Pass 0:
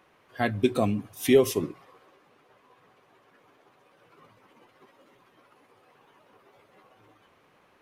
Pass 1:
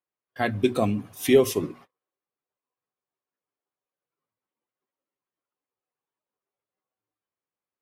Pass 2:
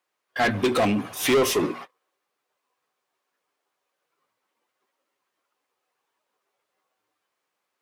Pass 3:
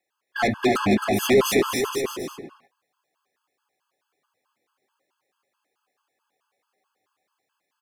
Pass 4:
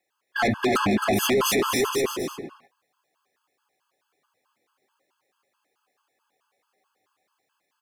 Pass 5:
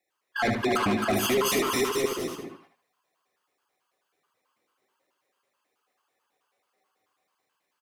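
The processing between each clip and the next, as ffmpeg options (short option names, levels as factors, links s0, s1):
-af "bandreject=f=60:t=h:w=6,bandreject=f=120:t=h:w=6,bandreject=f=180:t=h:w=6,bandreject=f=240:t=h:w=6,agate=range=0.0158:threshold=0.00398:ratio=16:detection=peak,volume=1.19"
-filter_complex "[0:a]asplit=2[s0][s1];[s1]highpass=f=720:p=1,volume=28.2,asoftclip=type=tanh:threshold=0.473[s2];[s0][s2]amix=inputs=2:normalize=0,lowpass=f=4200:p=1,volume=0.501,volume=0.501"
-af "aecho=1:1:270|472.5|624.4|738.3|823.7:0.631|0.398|0.251|0.158|0.1,afftfilt=real='re*gt(sin(2*PI*4.6*pts/sr)*(1-2*mod(floor(b*sr/1024/860),2)),0)':imag='im*gt(sin(2*PI*4.6*pts/sr)*(1-2*mod(floor(b*sr/1024/860),2)),0)':win_size=1024:overlap=0.75,volume=1.33"
-af "alimiter=limit=0.15:level=0:latency=1:release=14,volume=1.33"
-af "aecho=1:1:75|150|225:0.501|0.12|0.0289,volume=0.668"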